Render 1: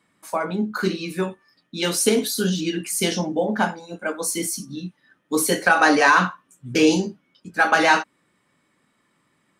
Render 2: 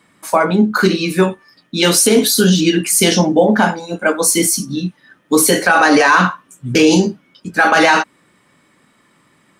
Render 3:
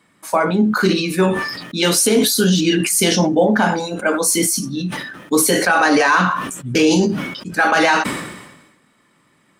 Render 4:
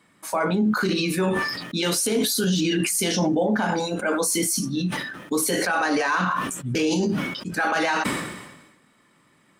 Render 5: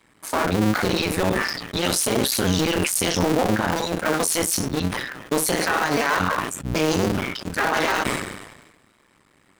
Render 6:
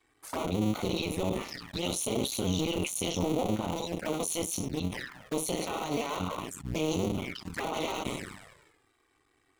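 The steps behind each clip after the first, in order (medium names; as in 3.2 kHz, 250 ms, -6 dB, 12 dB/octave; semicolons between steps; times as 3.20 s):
loudness maximiser +12.5 dB; trim -1 dB
decay stretcher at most 51 dB/s; trim -3.5 dB
peak limiter -12.5 dBFS, peak gain reduction 8 dB; trim -2 dB
cycle switcher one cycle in 2, muted; trim +4 dB
touch-sensitive flanger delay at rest 2.7 ms, full sweep at -20 dBFS; trim -8 dB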